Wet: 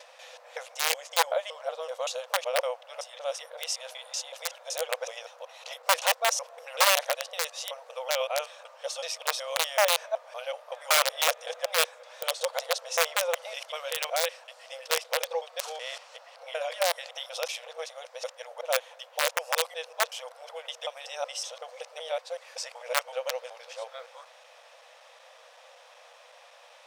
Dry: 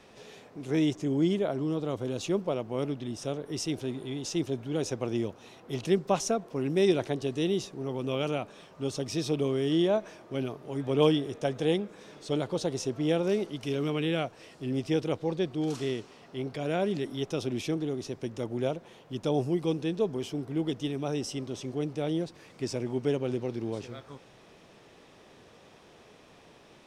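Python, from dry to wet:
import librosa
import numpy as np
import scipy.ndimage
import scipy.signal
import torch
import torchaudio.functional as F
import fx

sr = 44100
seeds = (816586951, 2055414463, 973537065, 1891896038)

y = fx.local_reverse(x, sr, ms=188.0)
y = (np.mod(10.0 ** (18.5 / 20.0) * y + 1.0, 2.0) - 1.0) / 10.0 ** (18.5 / 20.0)
y = fx.brickwall_highpass(y, sr, low_hz=480.0)
y = F.gain(torch.from_numpy(y), 4.5).numpy()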